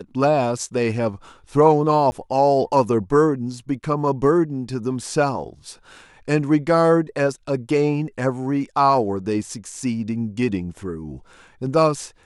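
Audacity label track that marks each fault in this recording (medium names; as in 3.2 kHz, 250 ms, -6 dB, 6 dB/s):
2.110000	2.120000	dropout 10 ms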